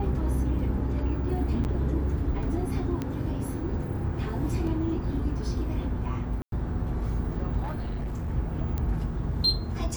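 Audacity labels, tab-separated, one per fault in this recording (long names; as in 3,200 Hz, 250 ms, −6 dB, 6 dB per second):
1.640000	1.650000	drop-out 9.1 ms
3.020000	3.020000	click −18 dBFS
4.670000	4.670000	drop-out 2.3 ms
6.420000	6.520000	drop-out 102 ms
7.620000	8.300000	clipping −28 dBFS
8.780000	8.780000	click −17 dBFS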